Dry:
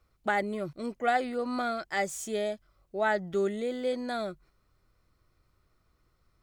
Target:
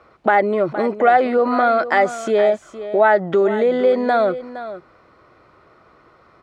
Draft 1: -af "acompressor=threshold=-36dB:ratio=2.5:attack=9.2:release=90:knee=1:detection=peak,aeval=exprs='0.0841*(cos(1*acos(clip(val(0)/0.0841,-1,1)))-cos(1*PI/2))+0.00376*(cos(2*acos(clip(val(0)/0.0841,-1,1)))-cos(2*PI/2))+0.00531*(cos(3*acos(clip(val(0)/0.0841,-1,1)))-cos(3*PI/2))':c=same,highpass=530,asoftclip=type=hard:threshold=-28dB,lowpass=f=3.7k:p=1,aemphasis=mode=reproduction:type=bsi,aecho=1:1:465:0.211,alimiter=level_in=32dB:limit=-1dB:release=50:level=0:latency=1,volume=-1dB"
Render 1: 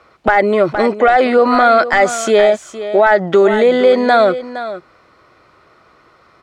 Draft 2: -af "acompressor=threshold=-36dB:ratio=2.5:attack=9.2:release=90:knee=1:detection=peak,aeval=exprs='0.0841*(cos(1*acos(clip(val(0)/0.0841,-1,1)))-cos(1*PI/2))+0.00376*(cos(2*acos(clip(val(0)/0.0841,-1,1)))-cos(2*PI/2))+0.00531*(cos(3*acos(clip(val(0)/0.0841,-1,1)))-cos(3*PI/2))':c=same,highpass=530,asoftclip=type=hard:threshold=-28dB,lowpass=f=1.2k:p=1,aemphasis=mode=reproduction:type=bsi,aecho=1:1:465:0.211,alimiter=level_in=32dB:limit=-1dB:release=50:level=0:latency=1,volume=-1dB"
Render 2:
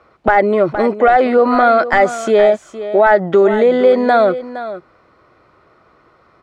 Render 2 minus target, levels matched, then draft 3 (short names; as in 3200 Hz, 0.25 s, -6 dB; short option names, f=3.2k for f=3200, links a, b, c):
compressor: peak gain reduction -5 dB
-af "acompressor=threshold=-44.5dB:ratio=2.5:attack=9.2:release=90:knee=1:detection=peak,aeval=exprs='0.0841*(cos(1*acos(clip(val(0)/0.0841,-1,1)))-cos(1*PI/2))+0.00376*(cos(2*acos(clip(val(0)/0.0841,-1,1)))-cos(2*PI/2))+0.00531*(cos(3*acos(clip(val(0)/0.0841,-1,1)))-cos(3*PI/2))':c=same,highpass=530,asoftclip=type=hard:threshold=-28dB,lowpass=f=1.2k:p=1,aemphasis=mode=reproduction:type=bsi,aecho=1:1:465:0.211,alimiter=level_in=32dB:limit=-1dB:release=50:level=0:latency=1,volume=-1dB"